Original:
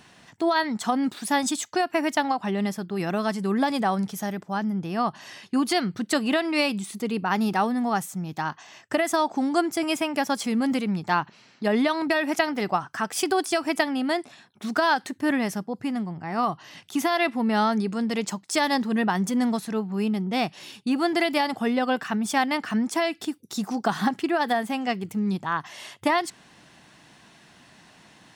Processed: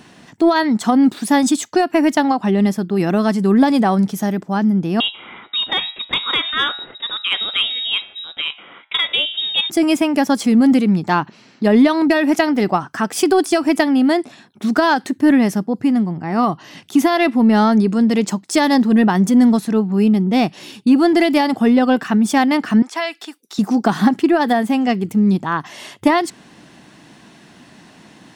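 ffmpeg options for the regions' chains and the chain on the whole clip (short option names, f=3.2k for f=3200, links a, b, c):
-filter_complex "[0:a]asettb=1/sr,asplit=3[a][b][c];[a]atrim=end=5.004[d];[b]atrim=start=5:end=9.7,asetpts=PTS-STARTPTS,afade=t=in:d=0.004:c=qsin,afade=t=out:st=4.696:d=0.004:c=qsin,aemphasis=mode=production:type=bsi,bandreject=f=102.3:t=h:w=4,bandreject=f=204.6:t=h:w=4,bandreject=f=306.9:t=h:w=4,bandreject=f=409.2:t=h:w=4,bandreject=f=511.5:t=h:w=4,bandreject=f=613.8:t=h:w=4,bandreject=f=716.1:t=h:w=4,bandreject=f=818.4:t=h:w=4,bandreject=f=920.7:t=h:w=4,bandreject=f=1.023k:t=h:w=4,bandreject=f=1.1253k:t=h:w=4,bandreject=f=1.2276k:t=h:w=4,bandreject=f=1.3299k:t=h:w=4,bandreject=f=1.4322k:t=h:w=4,bandreject=f=1.5345k:t=h:w=4,bandreject=f=1.6368k:t=h:w=4,bandreject=f=1.7391k:t=h:w=4,bandreject=f=1.8414k:t=h:w=4,bandreject=f=1.9437k:t=h:w=4,bandreject=f=2.046k:t=h:w=4,bandreject=f=2.1483k:t=h:w=4,bandreject=f=2.2506k:t=h:w=4,bandreject=f=2.3529k:t=h:w=4,bandreject=f=2.4552k:t=h:w=4,bandreject=f=2.5575k:t=h:w=4,bandreject=f=2.6598k:t=h:w=4,bandreject=f=2.7621k:t=h:w=4,bandreject=f=2.8644k:t=h:w=4,bandreject=f=2.9667k:t=h:w=4,bandreject=f=3.069k:t=h:w=4,bandreject=f=3.1713k:t=h:w=4,bandreject=f=3.2736k:t=h:w=4,bandreject=f=3.3759k:t=h:w=4,lowpass=f=3.4k:t=q:w=0.5098,lowpass=f=3.4k:t=q:w=0.6013,lowpass=f=3.4k:t=q:w=0.9,lowpass=f=3.4k:t=q:w=2.563,afreqshift=-4000[e];[c]atrim=start=9.696[f];[d][e]acrossfade=d=0.004:c1=hsin:c2=qsin[g];[g][f]acrossfade=d=0.004:c1=qsin:c2=hsin,asettb=1/sr,asplit=3[h][i][j];[h]atrim=end=22.824[k];[i]atrim=start=22.82:end=23.59,asetpts=PTS-STARTPTS,afade=t=in:d=0.004:c=qsin,afade=t=out:st=0.766:d=0.004:c=qsin,highpass=890,acrossover=split=5500[l][m];[m]acompressor=threshold=-49dB:ratio=4:attack=1:release=60[n];[l][n]amix=inputs=2:normalize=0[o];[j]atrim=start=23.586[p];[k][o]acrossfade=d=0.004:c1=hsin:c2=qsin[q];[q][p]acrossfade=d=0.004:c1=qsin:c2=hsin,equalizer=f=270:w=0.78:g=8,acontrast=30"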